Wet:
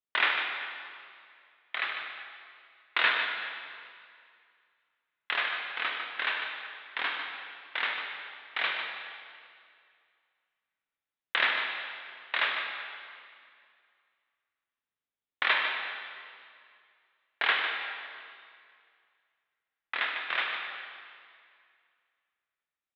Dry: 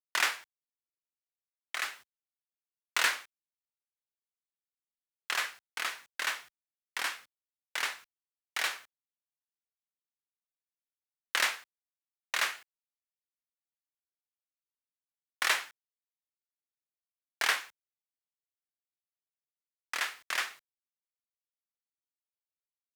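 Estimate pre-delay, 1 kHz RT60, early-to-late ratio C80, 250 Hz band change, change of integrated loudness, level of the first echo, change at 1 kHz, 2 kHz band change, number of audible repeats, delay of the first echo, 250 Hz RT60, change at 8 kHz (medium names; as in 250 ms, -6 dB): 8 ms, 2.2 s, 3.5 dB, +5.0 dB, +1.5 dB, -8.5 dB, +4.0 dB, +4.5 dB, 1, 150 ms, 2.3 s, under -30 dB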